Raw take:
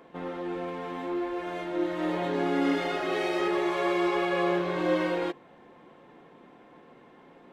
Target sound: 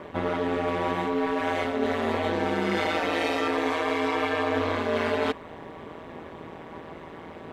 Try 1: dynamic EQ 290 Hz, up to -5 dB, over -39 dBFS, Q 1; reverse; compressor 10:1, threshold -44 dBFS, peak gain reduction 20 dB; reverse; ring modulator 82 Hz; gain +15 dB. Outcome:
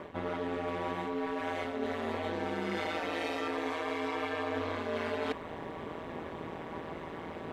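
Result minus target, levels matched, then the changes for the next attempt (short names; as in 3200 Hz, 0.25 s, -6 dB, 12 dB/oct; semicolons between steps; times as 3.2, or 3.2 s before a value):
compressor: peak gain reduction +8.5 dB
change: compressor 10:1, threshold -34.5 dBFS, peak gain reduction 11.5 dB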